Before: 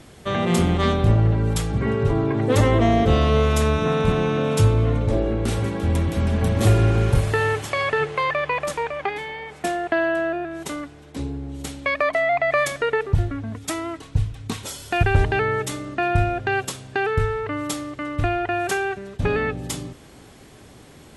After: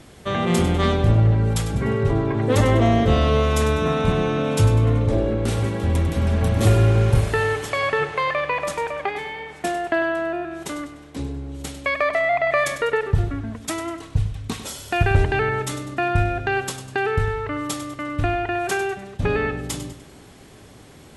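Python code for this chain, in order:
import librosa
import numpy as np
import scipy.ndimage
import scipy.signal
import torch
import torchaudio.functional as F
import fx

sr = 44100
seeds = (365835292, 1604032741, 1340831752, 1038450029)

y = fx.echo_feedback(x, sr, ms=99, feedback_pct=41, wet_db=-11.5)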